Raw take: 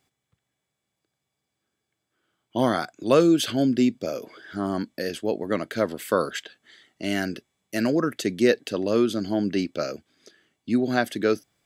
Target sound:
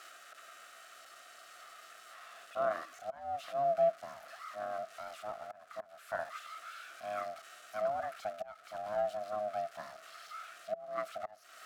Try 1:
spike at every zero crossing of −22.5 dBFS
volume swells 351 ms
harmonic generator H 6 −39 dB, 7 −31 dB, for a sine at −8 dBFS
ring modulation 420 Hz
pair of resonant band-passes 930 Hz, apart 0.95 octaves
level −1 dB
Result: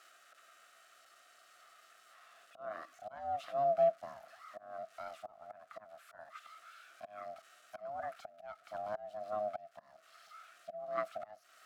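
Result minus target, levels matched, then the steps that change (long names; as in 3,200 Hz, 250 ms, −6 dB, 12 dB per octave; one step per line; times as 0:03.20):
spike at every zero crossing: distortion −7 dB
change: spike at every zero crossing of −15 dBFS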